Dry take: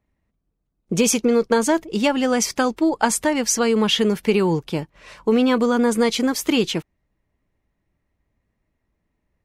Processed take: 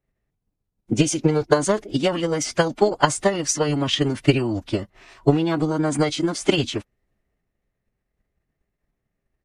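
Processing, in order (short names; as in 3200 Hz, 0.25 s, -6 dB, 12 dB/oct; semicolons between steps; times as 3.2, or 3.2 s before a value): transient shaper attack +10 dB, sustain +6 dB; formant-preserving pitch shift -7.5 st; gain -5 dB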